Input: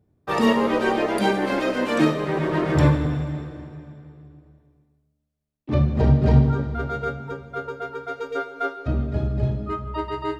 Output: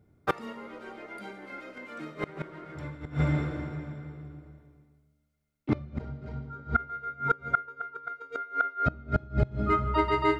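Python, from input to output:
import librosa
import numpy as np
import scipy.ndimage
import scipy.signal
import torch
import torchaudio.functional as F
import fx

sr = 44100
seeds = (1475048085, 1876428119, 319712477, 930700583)

y = fx.small_body(x, sr, hz=(1400.0, 2100.0), ring_ms=70, db=18)
y = fx.gate_flip(y, sr, shuts_db=-14.0, range_db=-25)
y = F.gain(torch.from_numpy(y), 2.0).numpy()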